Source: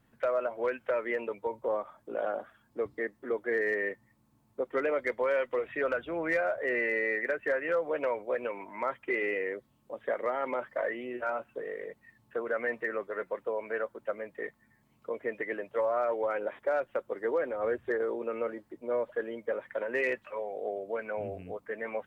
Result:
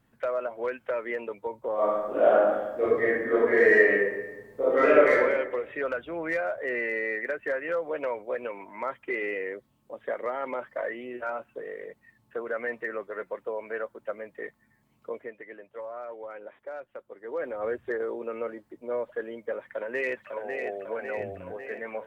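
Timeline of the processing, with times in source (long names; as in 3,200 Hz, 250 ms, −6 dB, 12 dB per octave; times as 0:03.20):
0:01.74–0:05.19: thrown reverb, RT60 1.1 s, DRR −11.5 dB
0:15.14–0:17.45: duck −9.5 dB, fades 0.19 s
0:19.61–0:20.67: delay throw 550 ms, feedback 65%, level −5.5 dB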